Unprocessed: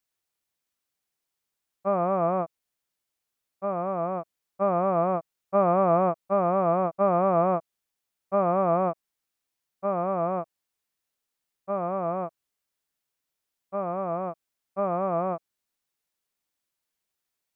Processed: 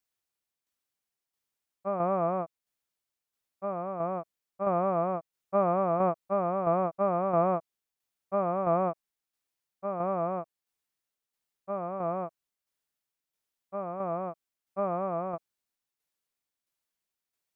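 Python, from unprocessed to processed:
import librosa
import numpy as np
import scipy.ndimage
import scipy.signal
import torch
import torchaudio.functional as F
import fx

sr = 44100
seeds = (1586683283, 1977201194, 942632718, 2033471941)

y = fx.tremolo_shape(x, sr, shape='saw_down', hz=1.5, depth_pct=45)
y = y * librosa.db_to_amplitude(-2.0)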